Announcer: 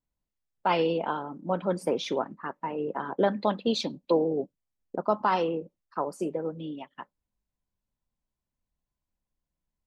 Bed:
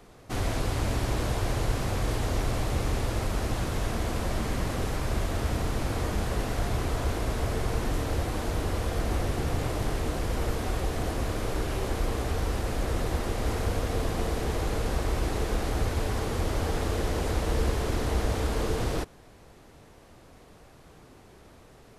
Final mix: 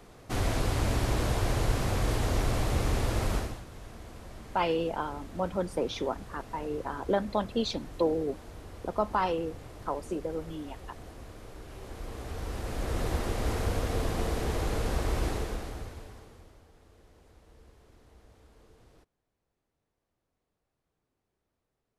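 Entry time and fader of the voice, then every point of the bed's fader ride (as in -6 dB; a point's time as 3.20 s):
3.90 s, -3.0 dB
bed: 3.36 s 0 dB
3.64 s -16.5 dB
11.60 s -16.5 dB
13.06 s -1.5 dB
15.28 s -1.5 dB
16.68 s -30.5 dB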